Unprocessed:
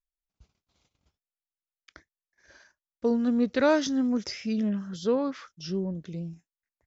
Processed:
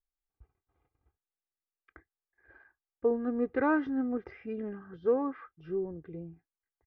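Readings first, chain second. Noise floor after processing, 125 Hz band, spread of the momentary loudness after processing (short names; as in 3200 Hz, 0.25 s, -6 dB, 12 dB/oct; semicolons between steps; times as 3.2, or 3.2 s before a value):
under -85 dBFS, -11.0 dB, 16 LU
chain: LPF 1800 Hz 24 dB/oct; comb 2.5 ms, depth 71%; gain -3.5 dB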